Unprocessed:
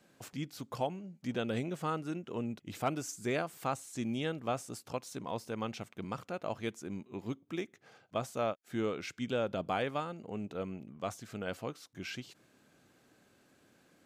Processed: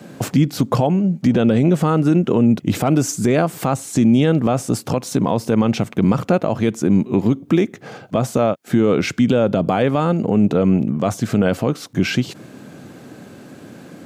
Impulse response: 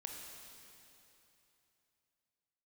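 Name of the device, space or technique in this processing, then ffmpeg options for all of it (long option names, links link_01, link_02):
mastering chain: -filter_complex "[0:a]highpass=58,highpass=110,equalizer=frequency=370:width_type=o:width=0.77:gain=-2,acompressor=threshold=-42dB:ratio=1.5,tiltshelf=frequency=640:gain=6.5,alimiter=level_in=31dB:limit=-1dB:release=50:level=0:latency=1,asettb=1/sr,asplit=3[link_01][link_02][link_03];[link_01]atrim=end=0.684[link_04];[link_02]atrim=start=0.68:end=1.71,asetpts=PTS-STARTPTS,afade=type=in:duration=0.004:curve=qsin,afade=type=out:start_time=1.026:duration=0.004:curve=qsin,highshelf=frequency=11000:gain=-5.5[link_05];[link_03]atrim=start=1.706[link_06];[link_04][link_05]acrossfade=duration=0.004:curve1=hsin:curve2=qsin[link_07];[link_07][link_06]acrossfade=duration=0.004:curve1=qsin:curve2=hsin,volume=-5dB"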